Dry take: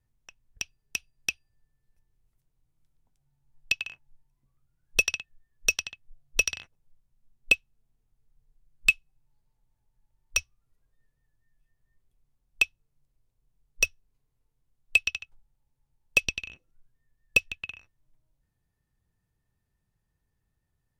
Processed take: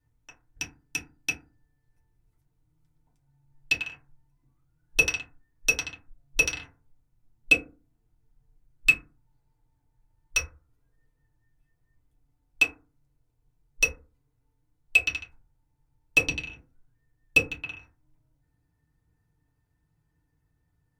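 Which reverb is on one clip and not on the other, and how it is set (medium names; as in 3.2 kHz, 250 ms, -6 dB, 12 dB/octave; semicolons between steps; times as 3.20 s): FDN reverb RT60 0.33 s, low-frequency decay 1.4×, high-frequency decay 0.35×, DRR -5.5 dB; trim -3 dB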